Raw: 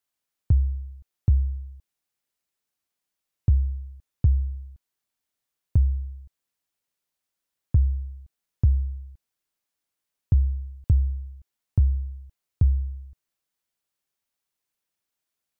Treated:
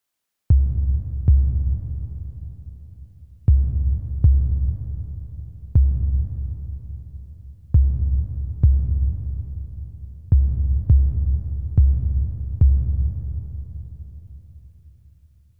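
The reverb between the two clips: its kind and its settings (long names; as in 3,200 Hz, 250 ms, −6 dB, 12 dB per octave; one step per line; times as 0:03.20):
comb and all-pass reverb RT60 4.5 s, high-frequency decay 0.45×, pre-delay 45 ms, DRR 3.5 dB
level +4.5 dB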